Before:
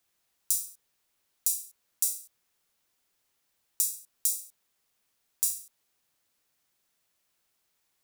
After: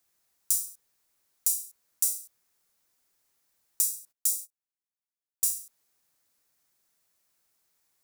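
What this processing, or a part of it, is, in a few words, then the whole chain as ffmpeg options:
exciter from parts: -filter_complex "[0:a]asplit=2[a][b];[b]highpass=f=2.8k:w=0.5412,highpass=f=2.8k:w=1.3066,asoftclip=type=tanh:threshold=-24dB,volume=-7dB[c];[a][c]amix=inputs=2:normalize=0,asplit=3[d][e][f];[d]afade=t=out:st=4.11:d=0.02[g];[e]agate=range=-24dB:threshold=-37dB:ratio=16:detection=peak,afade=t=in:st=4.11:d=0.02,afade=t=out:st=5.44:d=0.02[h];[f]afade=t=in:st=5.44:d=0.02[i];[g][h][i]amix=inputs=3:normalize=0"

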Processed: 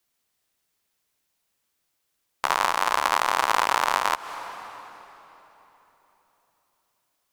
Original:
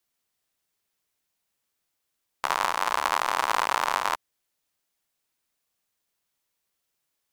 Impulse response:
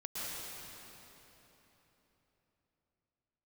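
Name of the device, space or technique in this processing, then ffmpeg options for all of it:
ducked reverb: -filter_complex "[0:a]asplit=3[a][b][c];[1:a]atrim=start_sample=2205[d];[b][d]afir=irnorm=-1:irlink=0[e];[c]apad=whole_len=322909[f];[e][f]sidechaincompress=threshold=-38dB:ratio=3:attack=39:release=157,volume=-12dB[g];[a][g]amix=inputs=2:normalize=0,volume=2.5dB"

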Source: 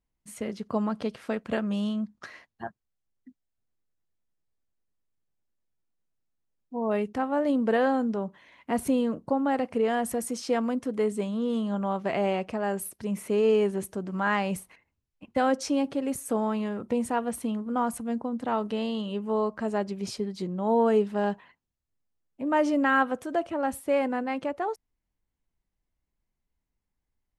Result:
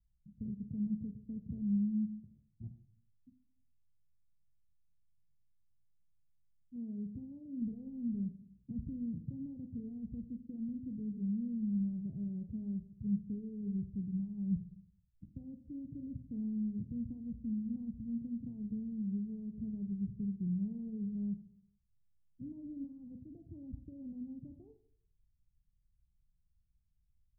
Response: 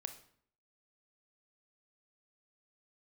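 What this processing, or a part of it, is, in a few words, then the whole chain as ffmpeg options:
club heard from the street: -filter_complex "[0:a]alimiter=limit=-22dB:level=0:latency=1,lowpass=f=150:w=0.5412,lowpass=f=150:w=1.3066[a];[1:a]atrim=start_sample=2205[b];[a][b]afir=irnorm=-1:irlink=0,asettb=1/sr,asplit=3[c][d][e];[c]atrim=end=6.764[f];[d]atrim=start=6.76:end=7.62,asetpts=PTS-STARTPTS,afade=t=in:d=0.004:c=qsin,afade=t=out:st=0.856:d=0.004:c=qsin,highpass=f=120:p=1[g];[e]atrim=start=7.616[h];[f][g]acrossfade=d=0.004:c1=hsin:c2=qsin[i];[i][h]acrossfade=d=0.004:c1=qsin:c2=hsin,volume=10.5dB"

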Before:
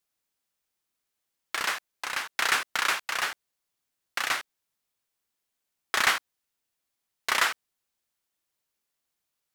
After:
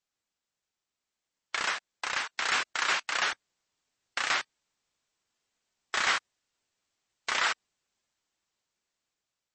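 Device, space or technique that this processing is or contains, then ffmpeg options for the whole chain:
low-bitrate web radio: -af "dynaudnorm=f=930:g=5:m=9dB,alimiter=limit=-13.5dB:level=0:latency=1:release=56,volume=-2.5dB" -ar 24000 -c:a libmp3lame -b:a 32k

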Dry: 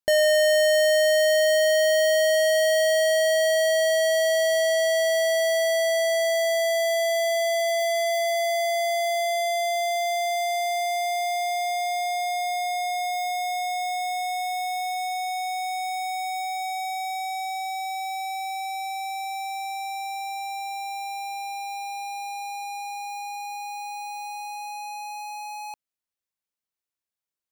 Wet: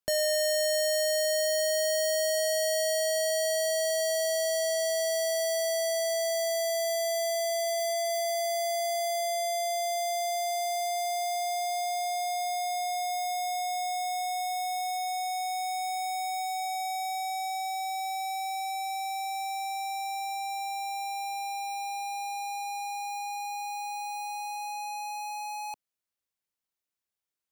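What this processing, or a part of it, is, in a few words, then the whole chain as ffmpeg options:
one-band saturation: -filter_complex "[0:a]acrossover=split=320|3300[a][b][c];[b]asoftclip=type=tanh:threshold=-28.5dB[d];[a][d][c]amix=inputs=3:normalize=0"

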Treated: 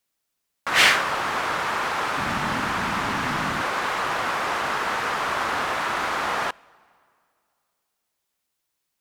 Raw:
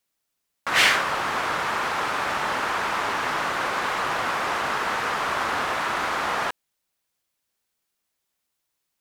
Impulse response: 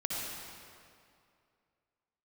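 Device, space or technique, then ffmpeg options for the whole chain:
keyed gated reverb: -filter_complex "[0:a]asplit=3[a][b][c];[1:a]atrim=start_sample=2205[d];[b][d]afir=irnorm=-1:irlink=0[e];[c]apad=whole_len=397034[f];[e][f]sidechaingate=range=-19dB:threshold=-17dB:ratio=16:detection=peak,volume=-10.5dB[g];[a][g]amix=inputs=2:normalize=0,asettb=1/sr,asplit=3[h][i][j];[h]atrim=end=2.174[k];[i]atrim=start=2.17:end=3.62,asetpts=PTS-STARTPTS,afade=t=in:d=0.004:c=qsin,afade=t=out:st=1.446:d=0.004:c=qsin,lowshelf=f=310:t=q:w=1.5:g=9[l];[j]atrim=start=3.616[m];[k][l]acrossfade=d=0.004:c1=hsin:c2=qsin[n];[n][m]acrossfade=d=0.004:c1=qsin:c2=hsin"

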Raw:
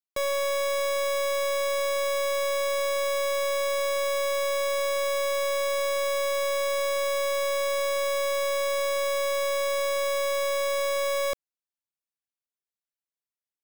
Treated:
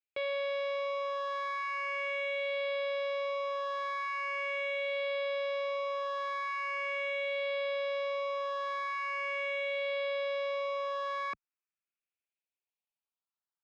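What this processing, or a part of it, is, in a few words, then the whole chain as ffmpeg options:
barber-pole phaser into a guitar amplifier: -filter_complex "[0:a]asplit=2[a][b];[b]afreqshift=0.41[c];[a][c]amix=inputs=2:normalize=1,asoftclip=type=tanh:threshold=-30dB,highpass=110,equalizer=f=150:t=q:w=4:g=-6,equalizer=f=260:t=q:w=4:g=-4,equalizer=f=890:t=q:w=4:g=5,equalizer=f=1.3k:t=q:w=4:g=6,equalizer=f=2.5k:t=q:w=4:g=10,lowpass=f=3.8k:w=0.5412,lowpass=f=3.8k:w=1.3066,volume=-2dB"

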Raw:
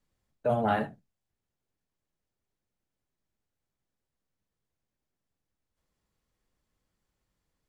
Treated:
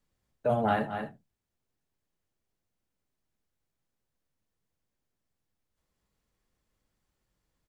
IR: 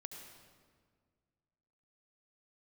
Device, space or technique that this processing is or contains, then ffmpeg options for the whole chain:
ducked delay: -filter_complex "[0:a]asplit=3[a][b][c];[b]adelay=222,volume=-6dB[d];[c]apad=whole_len=348739[e];[d][e]sidechaincompress=threshold=-44dB:ratio=8:attack=42:release=125[f];[a][f]amix=inputs=2:normalize=0"

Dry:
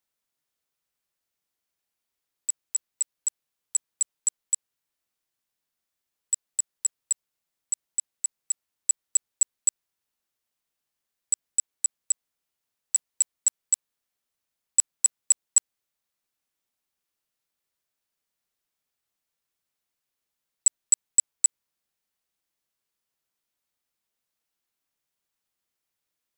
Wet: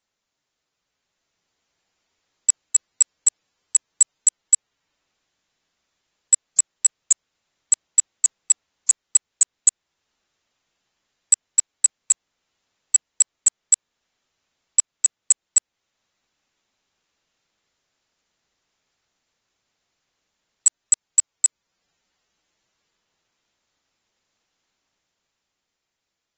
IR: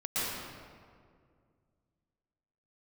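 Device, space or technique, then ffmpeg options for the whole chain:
low-bitrate web radio: -af "dynaudnorm=f=120:g=21:m=6.5dB,alimiter=limit=-13dB:level=0:latency=1:release=440,volume=6dB" -ar 48000 -c:a aac -b:a 24k

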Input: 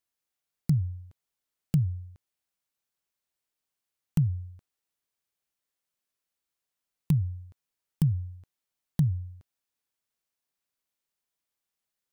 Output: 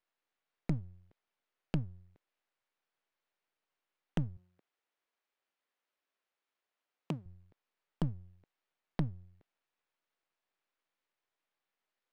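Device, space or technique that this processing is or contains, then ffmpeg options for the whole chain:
crystal radio: -filter_complex "[0:a]highpass=330,lowpass=2.6k,aeval=exprs='if(lt(val(0),0),0.251*val(0),val(0))':c=same,asettb=1/sr,asplit=3[a][b][c];[a]atrim=end=4.374[d];[b]atrim=start=4.37:end=7.26,asetpts=PTS-STARTPTS,afade=t=in:d=0.004:c=qsin,afade=t=out:st=2.886:d=0.004:c=qsin,highpass=190[e];[c]atrim=start=7.256[f];[d][e]acrossfade=d=0.004:c1=hsin:c2=qsin[g];[g][f]acrossfade=d=0.004:c1=qsin:c2=hsin,volume=8dB"

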